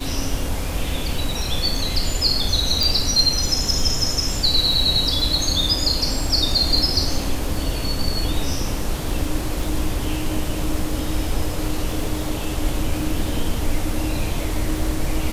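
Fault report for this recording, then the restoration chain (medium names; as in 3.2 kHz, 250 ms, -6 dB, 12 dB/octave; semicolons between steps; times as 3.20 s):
crackle 49 per s -27 dBFS
2.83 s: pop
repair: de-click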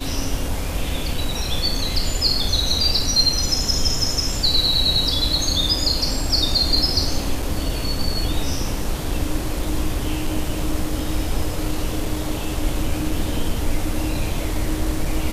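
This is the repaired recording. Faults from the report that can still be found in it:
2.83 s: pop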